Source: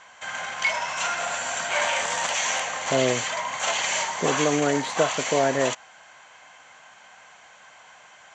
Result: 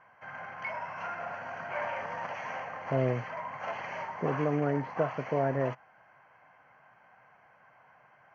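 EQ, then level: boxcar filter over 12 samples; distance through air 190 m; peaking EQ 130 Hz +9.5 dB 0.6 oct; -6.5 dB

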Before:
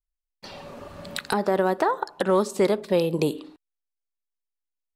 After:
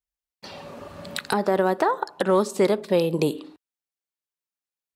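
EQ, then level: high-pass 64 Hz; +1.0 dB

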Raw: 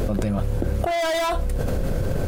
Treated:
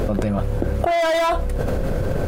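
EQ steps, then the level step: bass shelf 350 Hz -5.5 dB; treble shelf 2.9 kHz -9 dB; +6.0 dB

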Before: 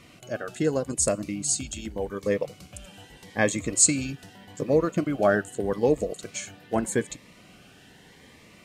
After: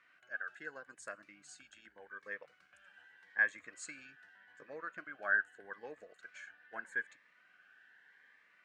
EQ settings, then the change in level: band-pass filter 1.6 kHz, Q 9; +2.0 dB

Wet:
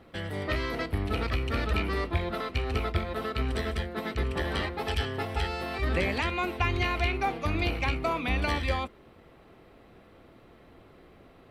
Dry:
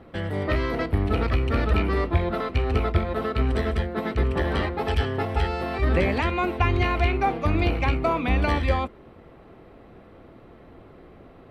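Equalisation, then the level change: treble shelf 2.3 kHz +11 dB; -7.0 dB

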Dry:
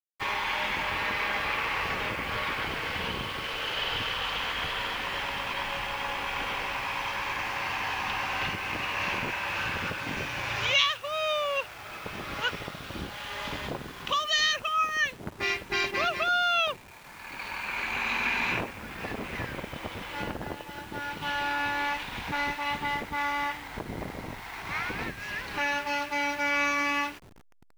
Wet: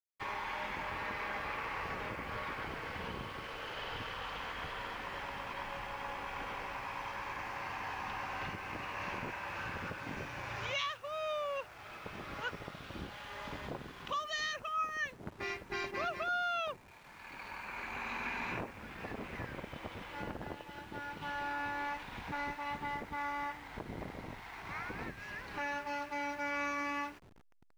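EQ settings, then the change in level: treble shelf 5.9 kHz -8 dB; dynamic bell 3.1 kHz, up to -7 dB, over -44 dBFS, Q 1.2; -7.0 dB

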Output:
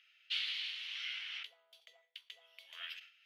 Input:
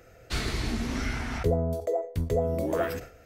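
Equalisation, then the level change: ladder high-pass 2.8 kHz, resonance 70%; distance through air 320 m; peaking EQ 11 kHz +10.5 dB 0.47 oct; +11.5 dB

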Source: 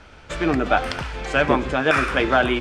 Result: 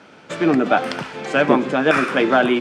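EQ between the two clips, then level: high-pass 170 Hz 24 dB/octave; bass shelf 480 Hz +7.5 dB; 0.0 dB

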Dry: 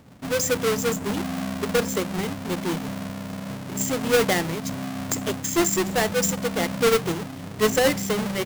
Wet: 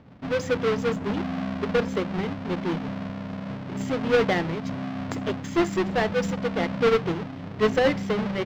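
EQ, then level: distance through air 230 m; 0.0 dB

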